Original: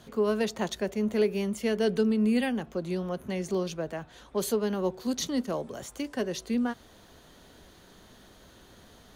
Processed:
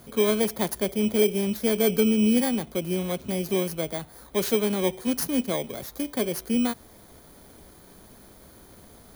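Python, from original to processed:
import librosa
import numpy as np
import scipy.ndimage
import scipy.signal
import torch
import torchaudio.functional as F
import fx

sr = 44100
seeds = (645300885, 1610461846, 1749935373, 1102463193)

y = fx.bit_reversed(x, sr, seeds[0], block=16)
y = F.gain(torch.from_numpy(y), 4.0).numpy()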